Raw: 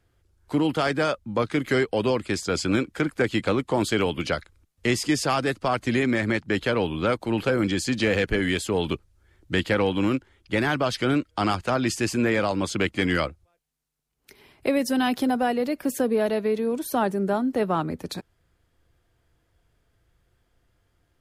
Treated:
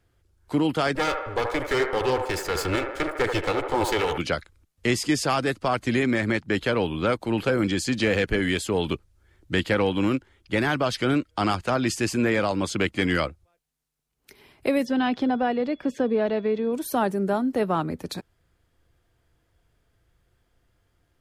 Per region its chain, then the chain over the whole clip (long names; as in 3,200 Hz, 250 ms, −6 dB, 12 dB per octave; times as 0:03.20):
0:00.95–0:04.18: lower of the sound and its delayed copy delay 2.3 ms + delay with a band-pass on its return 76 ms, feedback 58%, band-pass 880 Hz, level −3.5 dB
0:14.84–0:16.72: steady tone 3,400 Hz −54 dBFS + high-frequency loss of the air 160 metres
whole clip: no processing